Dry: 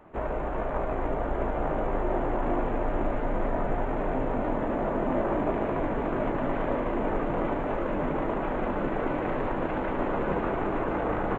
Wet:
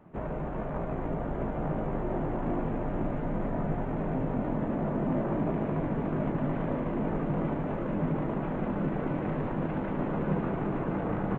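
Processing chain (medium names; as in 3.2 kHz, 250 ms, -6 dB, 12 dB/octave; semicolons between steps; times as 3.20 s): peaking EQ 160 Hz +14.5 dB 1.3 oct; trim -7 dB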